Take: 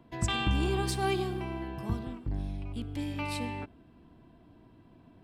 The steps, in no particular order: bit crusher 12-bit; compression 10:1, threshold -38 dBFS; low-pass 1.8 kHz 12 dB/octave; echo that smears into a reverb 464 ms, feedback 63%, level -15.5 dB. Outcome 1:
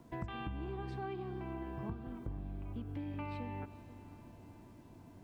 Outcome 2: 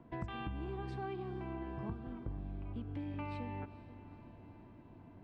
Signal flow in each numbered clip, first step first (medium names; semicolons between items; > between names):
low-pass > bit crusher > compression > echo that smears into a reverb; bit crusher > low-pass > compression > echo that smears into a reverb